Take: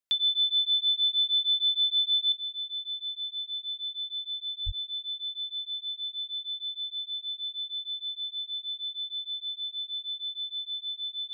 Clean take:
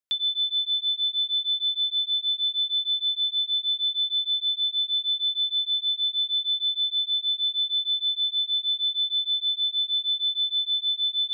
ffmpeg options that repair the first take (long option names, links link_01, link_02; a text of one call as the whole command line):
ffmpeg -i in.wav -filter_complex "[0:a]asplit=3[link_01][link_02][link_03];[link_01]afade=type=out:start_time=4.65:duration=0.02[link_04];[link_02]highpass=frequency=140:width=0.5412,highpass=frequency=140:width=1.3066,afade=type=in:start_time=4.65:duration=0.02,afade=type=out:start_time=4.77:duration=0.02[link_05];[link_03]afade=type=in:start_time=4.77:duration=0.02[link_06];[link_04][link_05][link_06]amix=inputs=3:normalize=0,asetnsamples=nb_out_samples=441:pad=0,asendcmd='2.32 volume volume 9.5dB',volume=0dB" out.wav